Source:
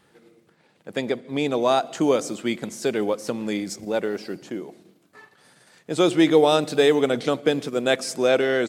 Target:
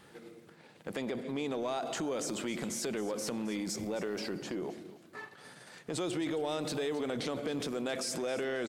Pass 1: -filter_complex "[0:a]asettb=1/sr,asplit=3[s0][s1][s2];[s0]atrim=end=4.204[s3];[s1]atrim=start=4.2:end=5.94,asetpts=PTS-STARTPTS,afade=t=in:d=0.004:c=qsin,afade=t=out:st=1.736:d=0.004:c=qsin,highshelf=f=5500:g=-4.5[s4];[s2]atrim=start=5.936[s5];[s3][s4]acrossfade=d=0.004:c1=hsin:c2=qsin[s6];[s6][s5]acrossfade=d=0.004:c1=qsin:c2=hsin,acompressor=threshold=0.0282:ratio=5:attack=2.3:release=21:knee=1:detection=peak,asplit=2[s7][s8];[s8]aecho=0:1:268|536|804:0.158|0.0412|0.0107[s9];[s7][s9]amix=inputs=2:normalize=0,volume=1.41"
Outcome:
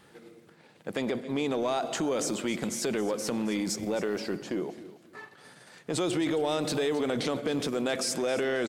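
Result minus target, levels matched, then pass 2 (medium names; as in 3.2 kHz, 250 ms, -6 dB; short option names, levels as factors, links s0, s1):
compression: peak gain reduction -6 dB
-filter_complex "[0:a]asettb=1/sr,asplit=3[s0][s1][s2];[s0]atrim=end=4.204[s3];[s1]atrim=start=4.2:end=5.94,asetpts=PTS-STARTPTS,afade=t=in:d=0.004:c=qsin,afade=t=out:st=1.736:d=0.004:c=qsin,highshelf=f=5500:g=-4.5[s4];[s2]atrim=start=5.936[s5];[s3][s4]acrossfade=d=0.004:c1=hsin:c2=qsin[s6];[s6][s5]acrossfade=d=0.004:c1=qsin:c2=hsin,acompressor=threshold=0.0119:ratio=5:attack=2.3:release=21:knee=1:detection=peak,asplit=2[s7][s8];[s8]aecho=0:1:268|536|804:0.158|0.0412|0.0107[s9];[s7][s9]amix=inputs=2:normalize=0,volume=1.41"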